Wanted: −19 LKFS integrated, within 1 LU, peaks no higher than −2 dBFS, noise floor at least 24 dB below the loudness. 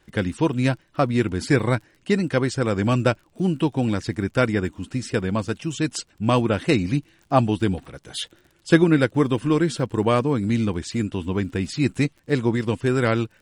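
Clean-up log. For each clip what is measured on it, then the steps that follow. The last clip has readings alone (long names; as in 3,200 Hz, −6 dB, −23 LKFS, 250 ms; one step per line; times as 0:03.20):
crackle rate 39 per second; integrated loudness −23.0 LKFS; sample peak −3.0 dBFS; target loudness −19.0 LKFS
→ click removal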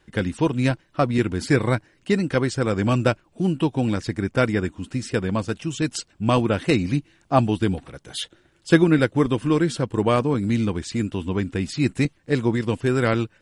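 crackle rate 0 per second; integrated loudness −23.0 LKFS; sample peak −3.0 dBFS; target loudness −19.0 LKFS
→ level +4 dB
brickwall limiter −2 dBFS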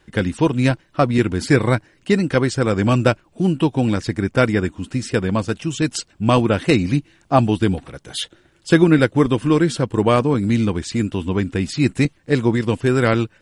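integrated loudness −19.0 LKFS; sample peak −2.0 dBFS; background noise floor −58 dBFS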